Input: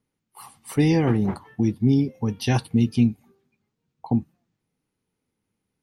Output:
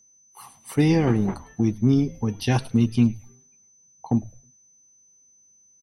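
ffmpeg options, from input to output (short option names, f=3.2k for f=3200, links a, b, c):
-filter_complex "[0:a]asplit=4[a][b][c][d];[b]adelay=106,afreqshift=-120,volume=-19dB[e];[c]adelay=212,afreqshift=-240,volume=-29.2dB[f];[d]adelay=318,afreqshift=-360,volume=-39.3dB[g];[a][e][f][g]amix=inputs=4:normalize=0,aeval=exprs='val(0)+0.002*sin(2*PI*6100*n/s)':c=same,aeval=exprs='0.376*(cos(1*acos(clip(val(0)/0.376,-1,1)))-cos(1*PI/2))+0.00668*(cos(7*acos(clip(val(0)/0.376,-1,1)))-cos(7*PI/2))':c=same"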